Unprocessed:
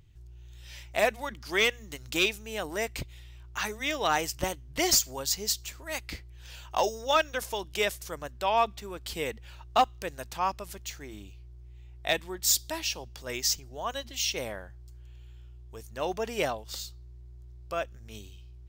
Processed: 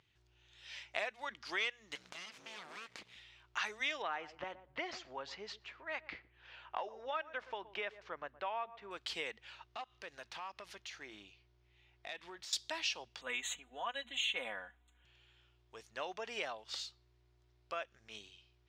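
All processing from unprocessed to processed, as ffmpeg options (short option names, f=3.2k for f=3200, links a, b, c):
-filter_complex "[0:a]asettb=1/sr,asplit=3[a][b][c];[a]atrim=end=1.954[d];[b]atrim=start=1.95:end=3.16,asetpts=PTS-STARTPTS,afade=t=in:d=0.004:c=qsin,afade=t=out:st=1.206:d=0.004:c=qsin,acompressor=threshold=-37dB:ratio=16:attack=3.2:release=140:knee=1:detection=peak,aeval=exprs='abs(val(0))':c=same,acrusher=bits=4:mode=log:mix=0:aa=0.000001[e];[c]atrim=start=3.156[f];[d][e]acrossfade=d=0.004:c1=hsin:c2=qsin[g];[g][f]acrossfade=d=0.004:c1=qsin:c2=hsin,asettb=1/sr,asplit=3[h][i][j];[h]atrim=end=4.024[k];[i]atrim=start=4.02:end=8.91,asetpts=PTS-STARTPTS,afade=t=in:d=0.004:c=qsin,afade=t=out:st=4.886:d=0.004:c=qsin,lowpass=2k,asplit=2[l][m];[m]adelay=119,lowpass=f=880:p=1,volume=-17dB,asplit=2[n][o];[o]adelay=119,lowpass=f=880:p=1,volume=0.16[p];[l][n][p]amix=inputs=3:normalize=0,atrim=end_sample=215649[q];[j]atrim=start=8.906[r];[k][q]acrossfade=d=0.004:c1=hsin:c2=qsin[s];[s][r]acrossfade=d=0.004:c1=qsin:c2=hsin,asettb=1/sr,asplit=3[t][u][v];[t]atrim=end=9.584[w];[u]atrim=start=9.58:end=12.53,asetpts=PTS-STARTPTS,afade=t=in:d=0.004:c=qsin,afade=t=out:st=2.946:d=0.004:c=qsin,equalizer=f=7.7k:t=o:w=0.21:g=-6.5,acompressor=threshold=-38dB:ratio=6:attack=3.2:release=140:knee=1:detection=peak,volume=36dB,asoftclip=hard,volume=-36dB[x];[v]atrim=start=12.526[y];[w][x]acrossfade=d=0.004:c1=hsin:c2=qsin[z];[z][y]acrossfade=d=0.004:c1=qsin:c2=hsin,asettb=1/sr,asplit=3[aa][ab][ac];[aa]atrim=end=13.214[ad];[ab]atrim=start=13.21:end=15.05,asetpts=PTS-STARTPTS,afade=t=in:d=0.004:c=qsin,afade=t=out:st=1.836:d=0.004:c=qsin,asuperstop=centerf=5100:order=8:qfactor=1.8,equalizer=f=450:w=5.7:g=-5.5,aecho=1:1:4.1:0.76,atrim=end_sample=81144[ae];[ac]atrim=start=15.046[af];[ad][ae]acrossfade=d=0.004:c1=hsin:c2=qsin[ag];[ag][af]acrossfade=d=0.004:c1=qsin:c2=hsin,lowpass=3.7k,acompressor=threshold=-33dB:ratio=6,highpass=f=1.5k:p=1,volume=2.5dB"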